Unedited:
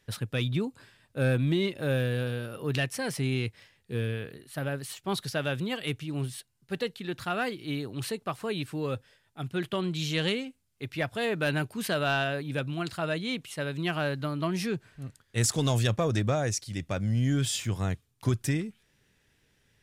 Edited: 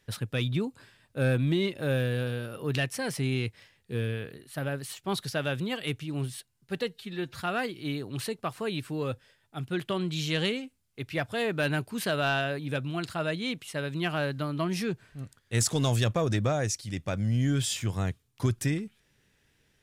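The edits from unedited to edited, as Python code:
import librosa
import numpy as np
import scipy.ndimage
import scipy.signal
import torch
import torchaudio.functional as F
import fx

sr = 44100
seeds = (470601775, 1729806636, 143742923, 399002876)

y = fx.edit(x, sr, fx.stretch_span(start_s=6.89, length_s=0.34, factor=1.5), tone=tone)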